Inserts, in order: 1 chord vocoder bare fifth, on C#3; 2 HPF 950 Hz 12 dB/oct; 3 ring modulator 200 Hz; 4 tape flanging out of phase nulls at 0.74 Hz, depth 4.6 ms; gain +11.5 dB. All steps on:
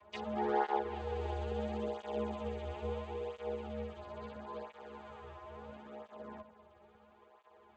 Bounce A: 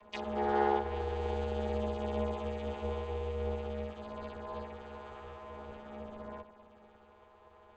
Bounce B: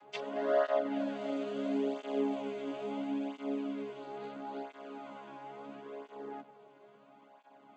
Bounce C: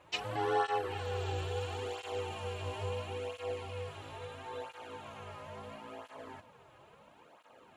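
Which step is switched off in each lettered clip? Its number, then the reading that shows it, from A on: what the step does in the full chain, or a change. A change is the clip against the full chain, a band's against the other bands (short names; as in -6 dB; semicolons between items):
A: 4, 125 Hz band +2.0 dB; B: 3, crest factor change -2.0 dB; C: 1, 250 Hz band -10.5 dB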